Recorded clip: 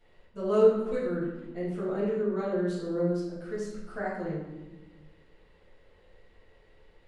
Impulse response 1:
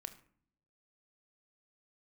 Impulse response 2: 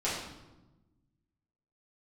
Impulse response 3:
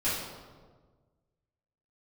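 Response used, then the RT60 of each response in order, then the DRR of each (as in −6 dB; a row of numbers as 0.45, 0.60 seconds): 2; non-exponential decay, 1.1 s, 1.5 s; 8.5, −9.5, −12.5 decibels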